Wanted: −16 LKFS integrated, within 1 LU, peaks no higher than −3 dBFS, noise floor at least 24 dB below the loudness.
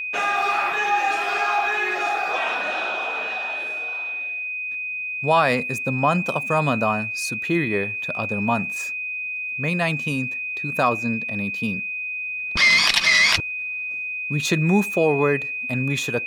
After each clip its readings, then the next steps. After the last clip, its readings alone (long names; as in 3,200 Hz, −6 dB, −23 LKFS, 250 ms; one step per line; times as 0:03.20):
interfering tone 2,500 Hz; level of the tone −26 dBFS; integrated loudness −21.5 LKFS; sample peak −4.0 dBFS; target loudness −16.0 LKFS
→ notch filter 2,500 Hz, Q 30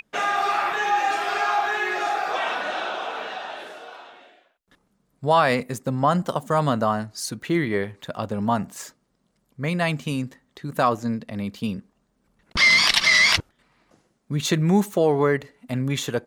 interfering tone none found; integrated loudness −22.5 LKFS; sample peak −5.0 dBFS; target loudness −16.0 LKFS
→ level +6.5 dB
brickwall limiter −3 dBFS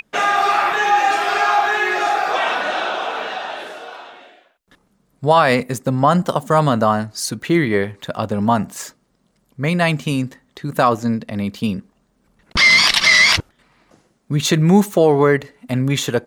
integrated loudness −16.5 LKFS; sample peak −3.0 dBFS; background noise floor −64 dBFS